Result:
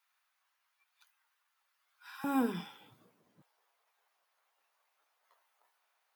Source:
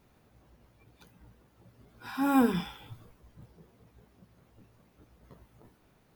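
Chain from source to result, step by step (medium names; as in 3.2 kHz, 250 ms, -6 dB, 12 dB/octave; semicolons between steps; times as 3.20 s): high-pass 1.1 kHz 24 dB/octave, from 2.24 s 170 Hz, from 3.42 s 780 Hz; trim -7 dB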